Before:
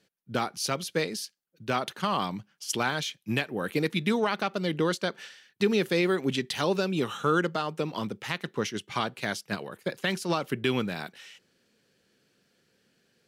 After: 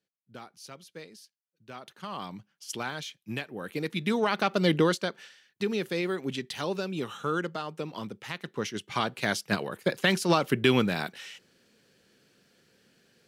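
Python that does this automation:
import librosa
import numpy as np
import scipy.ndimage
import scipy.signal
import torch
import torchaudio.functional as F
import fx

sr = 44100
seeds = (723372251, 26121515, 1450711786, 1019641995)

y = fx.gain(x, sr, db=fx.line((1.69, -16.5), (2.36, -6.5), (3.71, -6.5), (4.7, 6.0), (5.23, -5.0), (8.32, -5.0), (9.46, 4.5)))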